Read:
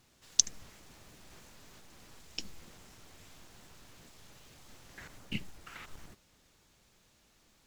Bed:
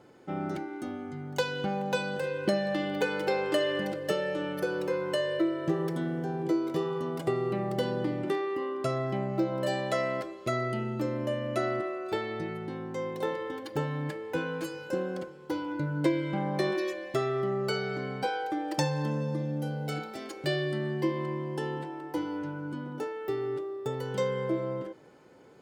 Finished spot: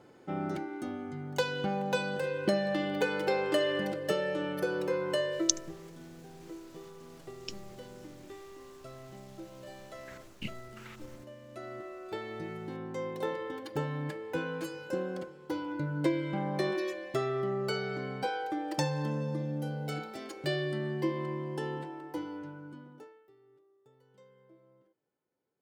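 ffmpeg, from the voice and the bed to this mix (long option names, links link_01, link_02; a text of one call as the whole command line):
ffmpeg -i stem1.wav -i stem2.wav -filter_complex "[0:a]adelay=5100,volume=-2.5dB[link_01];[1:a]volume=14.5dB,afade=type=out:start_time=5.19:duration=0.53:silence=0.141254,afade=type=in:start_time=11.48:duration=1.34:silence=0.16788,afade=type=out:start_time=21.75:duration=1.54:silence=0.0398107[link_02];[link_01][link_02]amix=inputs=2:normalize=0" out.wav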